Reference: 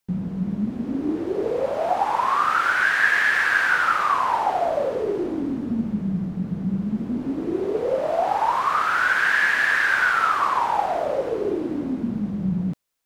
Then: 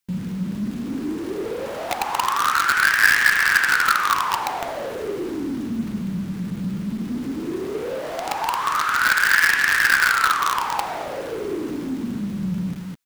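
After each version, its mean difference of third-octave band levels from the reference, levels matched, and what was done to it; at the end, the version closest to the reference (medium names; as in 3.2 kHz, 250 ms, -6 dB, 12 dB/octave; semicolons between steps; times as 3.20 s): 6.0 dB: bass shelf 340 Hz -4.5 dB; loudspeakers at several distances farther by 17 m -10 dB, 75 m -9 dB; in parallel at -10 dB: companded quantiser 2-bit; on the sum: peaking EQ 640 Hz -9.5 dB 1.1 oct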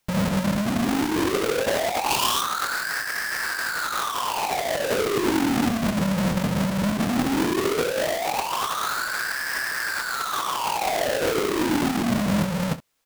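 12.0 dB: square wave that keeps the level; time-frequency box 2.10–2.42 s, 430–2300 Hz -7 dB; compressor with a negative ratio -24 dBFS, ratio -1; early reflections 25 ms -11.5 dB, 67 ms -16.5 dB; trim -1 dB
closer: first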